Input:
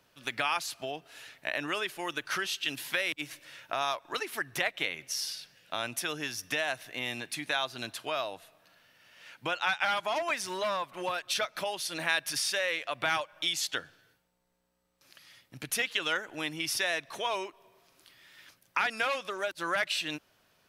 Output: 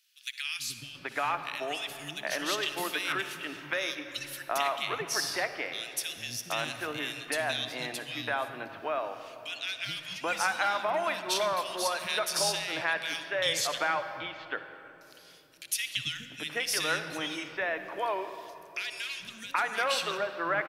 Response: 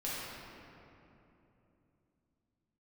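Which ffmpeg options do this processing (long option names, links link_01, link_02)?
-filter_complex "[0:a]acrossover=split=230|2300[link_01][link_02][link_03];[link_01]adelay=430[link_04];[link_02]adelay=780[link_05];[link_04][link_05][link_03]amix=inputs=3:normalize=0,asplit=2[link_06][link_07];[1:a]atrim=start_sample=2205,adelay=60[link_08];[link_07][link_08]afir=irnorm=-1:irlink=0,volume=-13.5dB[link_09];[link_06][link_09]amix=inputs=2:normalize=0,volume=2dB"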